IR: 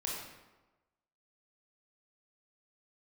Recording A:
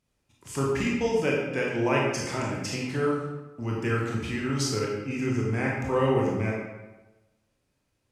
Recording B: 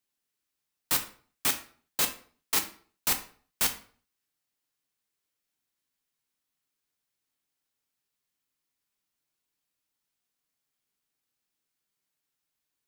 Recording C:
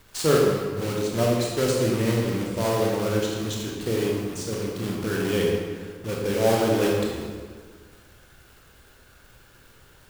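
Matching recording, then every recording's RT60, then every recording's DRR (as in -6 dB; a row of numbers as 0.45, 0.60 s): A; 1.1, 0.45, 1.6 s; -3.5, 5.0, -2.5 dB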